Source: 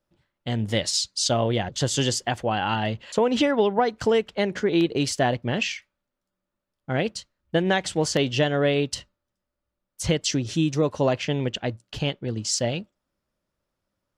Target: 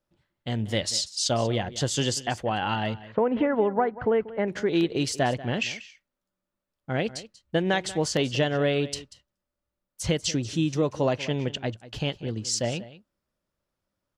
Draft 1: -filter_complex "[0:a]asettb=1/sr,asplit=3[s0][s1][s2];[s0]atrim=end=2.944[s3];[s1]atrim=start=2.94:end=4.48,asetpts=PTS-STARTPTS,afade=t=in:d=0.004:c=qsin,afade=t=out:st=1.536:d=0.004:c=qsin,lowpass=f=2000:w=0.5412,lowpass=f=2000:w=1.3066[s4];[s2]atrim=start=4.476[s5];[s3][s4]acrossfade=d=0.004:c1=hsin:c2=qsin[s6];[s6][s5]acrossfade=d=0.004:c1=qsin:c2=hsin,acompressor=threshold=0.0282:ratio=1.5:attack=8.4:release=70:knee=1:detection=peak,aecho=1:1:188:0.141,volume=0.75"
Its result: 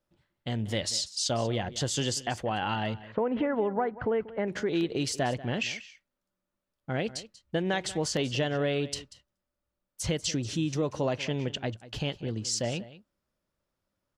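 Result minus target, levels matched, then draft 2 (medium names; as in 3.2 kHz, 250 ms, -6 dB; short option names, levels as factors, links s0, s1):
compression: peak gain reduction +5.5 dB
-filter_complex "[0:a]asettb=1/sr,asplit=3[s0][s1][s2];[s0]atrim=end=2.944[s3];[s1]atrim=start=2.94:end=4.48,asetpts=PTS-STARTPTS,afade=t=in:d=0.004:c=qsin,afade=t=out:st=1.536:d=0.004:c=qsin,lowpass=f=2000:w=0.5412,lowpass=f=2000:w=1.3066[s4];[s2]atrim=start=4.476[s5];[s3][s4]acrossfade=d=0.004:c1=hsin:c2=qsin[s6];[s6][s5]acrossfade=d=0.004:c1=qsin:c2=hsin,aecho=1:1:188:0.141,volume=0.75"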